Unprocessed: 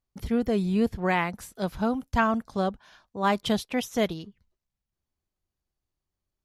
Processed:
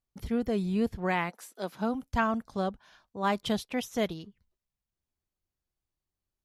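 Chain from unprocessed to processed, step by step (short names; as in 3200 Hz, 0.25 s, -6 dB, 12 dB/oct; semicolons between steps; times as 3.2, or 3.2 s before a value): 1.29–1.93 HPF 460 Hz -> 130 Hz 24 dB/oct; gain -4 dB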